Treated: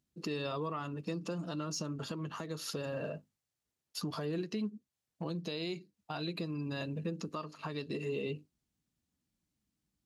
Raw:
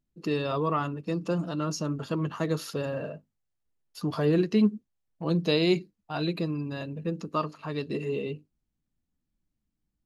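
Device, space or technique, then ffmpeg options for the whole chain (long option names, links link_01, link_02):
broadcast voice chain: -af "highpass=72,deesser=0.7,acompressor=threshold=-34dB:ratio=3,equalizer=frequency=6000:width_type=o:width=2.3:gain=5.5,alimiter=level_in=3dB:limit=-24dB:level=0:latency=1:release=328,volume=-3dB"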